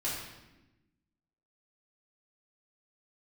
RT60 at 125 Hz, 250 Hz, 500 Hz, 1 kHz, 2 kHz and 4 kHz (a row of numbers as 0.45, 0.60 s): 1.5, 1.6, 1.1, 0.95, 0.95, 0.85 s